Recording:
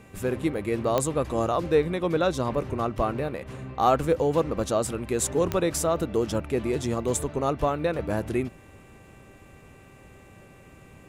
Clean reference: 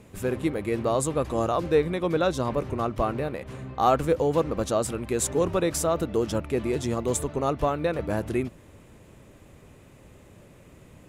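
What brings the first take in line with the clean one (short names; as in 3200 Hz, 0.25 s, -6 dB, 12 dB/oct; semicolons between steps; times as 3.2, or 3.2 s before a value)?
de-click; de-hum 389.8 Hz, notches 7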